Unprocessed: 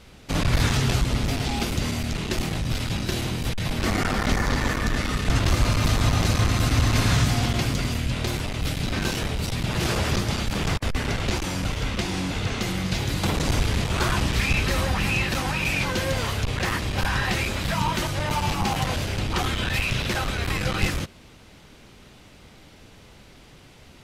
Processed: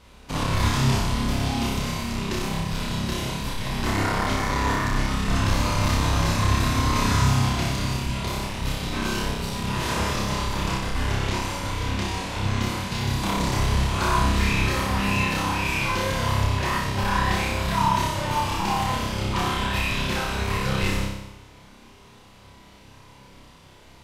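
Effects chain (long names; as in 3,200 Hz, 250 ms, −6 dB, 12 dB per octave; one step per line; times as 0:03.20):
parametric band 1,000 Hz +11 dB 0.23 octaves
flutter between parallel walls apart 5.2 metres, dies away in 0.88 s
level −5 dB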